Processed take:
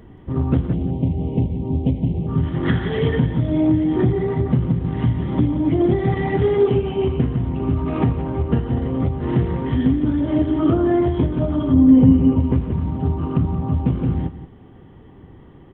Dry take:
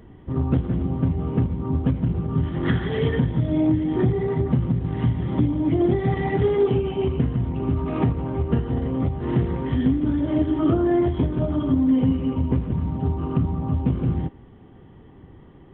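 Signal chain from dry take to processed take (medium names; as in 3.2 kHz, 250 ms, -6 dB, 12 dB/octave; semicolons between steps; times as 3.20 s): 0.73–2.27 s: Chebyshev band-stop 760–2600 Hz, order 2; 11.74–12.40 s: tilt shelf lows +5.5 dB, about 1.1 kHz; delay 177 ms -13.5 dB; trim +2.5 dB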